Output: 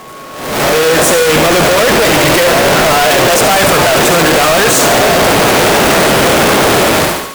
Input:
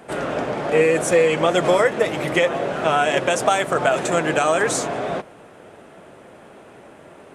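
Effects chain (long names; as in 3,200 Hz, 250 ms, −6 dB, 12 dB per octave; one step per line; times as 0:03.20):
sign of each sample alone
automatic gain control gain up to 13.5 dB
harmonic generator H 3 −12 dB, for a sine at −7 dBFS
steady tone 1,100 Hz −31 dBFS
on a send: feedback echo with a high-pass in the loop 71 ms, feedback 60%, high-pass 820 Hz, level −7.5 dB
on the sum: level −2.5 dB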